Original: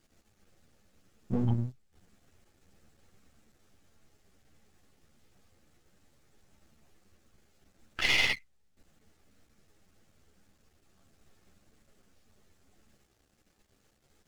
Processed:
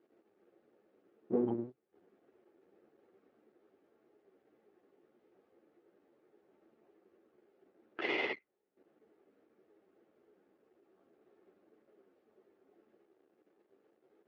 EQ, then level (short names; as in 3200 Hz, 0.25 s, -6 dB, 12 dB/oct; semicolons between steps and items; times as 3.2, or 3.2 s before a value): resonant high-pass 370 Hz, resonance Q 3.5; tape spacing loss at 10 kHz 36 dB; high shelf 4600 Hz -10.5 dB; 0.0 dB